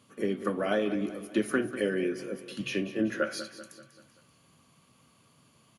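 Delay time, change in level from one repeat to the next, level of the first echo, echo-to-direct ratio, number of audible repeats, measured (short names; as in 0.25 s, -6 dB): 0.193 s, -6.0 dB, -13.0 dB, -12.0 dB, 4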